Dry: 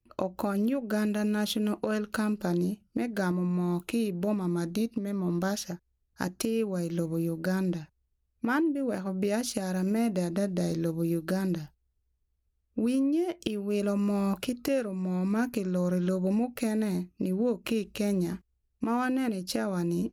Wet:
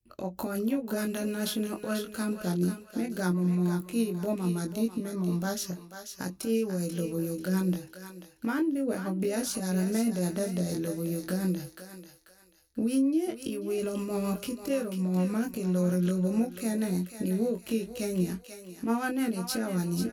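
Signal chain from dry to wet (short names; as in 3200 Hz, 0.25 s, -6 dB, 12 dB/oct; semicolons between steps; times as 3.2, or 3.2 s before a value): high shelf 7100 Hz +11 dB; limiter -20.5 dBFS, peak gain reduction 10 dB; rotary speaker horn 6.7 Hz; doubler 22 ms -4.5 dB; thinning echo 0.489 s, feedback 36%, high-pass 740 Hz, level -7.5 dB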